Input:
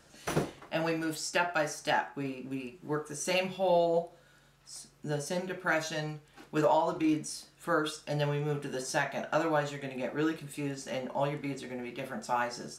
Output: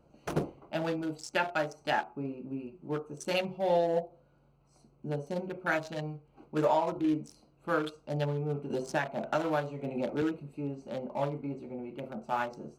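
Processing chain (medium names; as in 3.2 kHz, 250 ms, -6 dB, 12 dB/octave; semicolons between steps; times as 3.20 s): local Wiener filter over 25 samples; 8.70–10.22 s: three bands compressed up and down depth 70%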